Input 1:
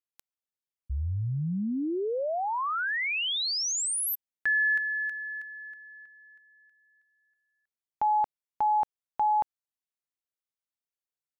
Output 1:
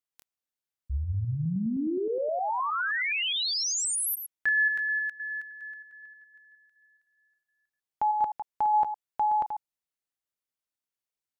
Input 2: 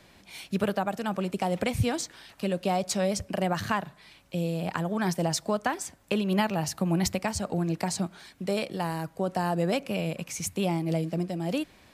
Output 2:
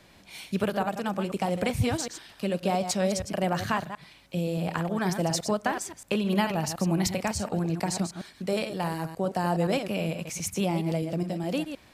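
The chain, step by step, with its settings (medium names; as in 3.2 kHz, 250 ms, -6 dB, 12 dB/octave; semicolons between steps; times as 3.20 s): chunks repeated in reverse 104 ms, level -8 dB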